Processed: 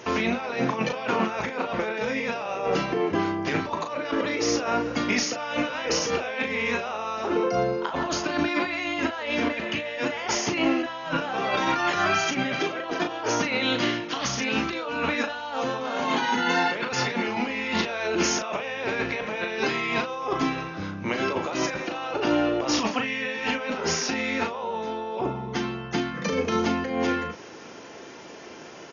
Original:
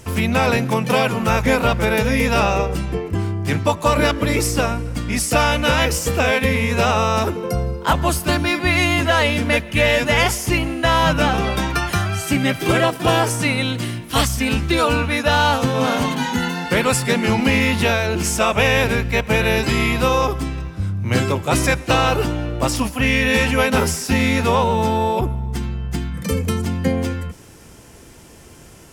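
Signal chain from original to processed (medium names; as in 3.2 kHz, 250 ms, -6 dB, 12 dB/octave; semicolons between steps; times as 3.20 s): high-pass 340 Hz 12 dB/octave; treble shelf 4.7 kHz -10 dB; compressor with a negative ratio -28 dBFS, ratio -1; doubling 37 ms -7 dB; AC-3 48 kbps 48 kHz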